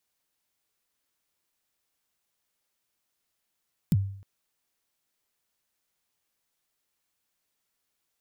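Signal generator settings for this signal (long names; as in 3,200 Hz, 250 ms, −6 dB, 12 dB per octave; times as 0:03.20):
synth kick length 0.31 s, from 210 Hz, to 98 Hz, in 37 ms, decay 0.59 s, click on, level −16 dB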